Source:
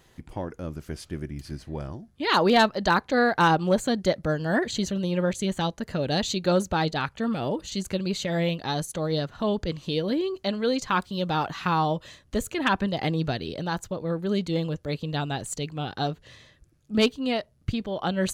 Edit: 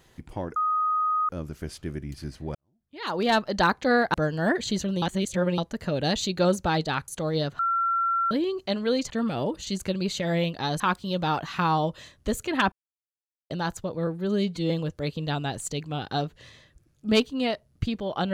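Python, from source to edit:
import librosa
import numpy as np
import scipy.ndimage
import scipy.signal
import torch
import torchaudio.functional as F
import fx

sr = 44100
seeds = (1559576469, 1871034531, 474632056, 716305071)

y = fx.edit(x, sr, fx.insert_tone(at_s=0.56, length_s=0.73, hz=1250.0, db=-21.5),
    fx.fade_in_span(start_s=1.82, length_s=0.94, curve='qua'),
    fx.cut(start_s=3.41, length_s=0.8),
    fx.reverse_span(start_s=5.09, length_s=0.56),
    fx.move(start_s=7.15, length_s=1.7, to_s=10.87),
    fx.bleep(start_s=9.36, length_s=0.72, hz=1360.0, db=-21.5),
    fx.silence(start_s=12.79, length_s=0.78),
    fx.stretch_span(start_s=14.14, length_s=0.42, factor=1.5), tone=tone)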